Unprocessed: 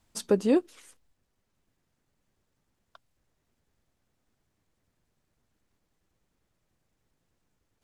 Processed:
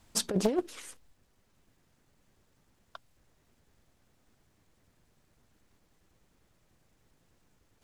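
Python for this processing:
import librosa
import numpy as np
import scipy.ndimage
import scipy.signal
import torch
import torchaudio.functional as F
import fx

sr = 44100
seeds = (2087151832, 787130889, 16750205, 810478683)

y = fx.over_compress(x, sr, threshold_db=-26.0, ratio=-0.5)
y = fx.doppler_dist(y, sr, depth_ms=0.83)
y = y * librosa.db_to_amplitude(2.0)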